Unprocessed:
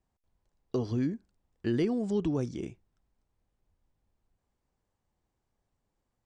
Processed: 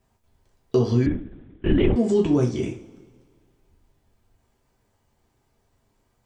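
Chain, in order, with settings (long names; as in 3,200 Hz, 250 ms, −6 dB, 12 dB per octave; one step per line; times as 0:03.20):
in parallel at +0.5 dB: downward compressor, threshold −38 dBFS, peak gain reduction 13.5 dB
on the sum: coupled-rooms reverb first 0.33 s, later 1.9 s, from −21 dB, DRR −1 dB
0:01.06–0:01.96: linear-prediction vocoder at 8 kHz whisper
level +4.5 dB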